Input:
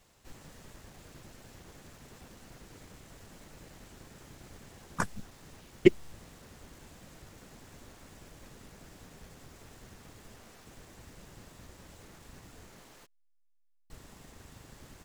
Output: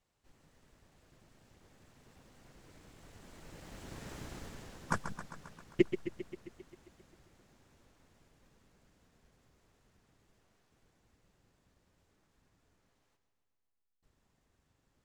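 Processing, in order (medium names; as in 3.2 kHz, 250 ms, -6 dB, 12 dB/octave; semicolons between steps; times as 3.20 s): Doppler pass-by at 4.15 s, 8 m/s, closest 2.8 m; treble shelf 7.9 kHz -6.5 dB; modulated delay 133 ms, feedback 66%, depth 85 cents, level -10 dB; trim +6 dB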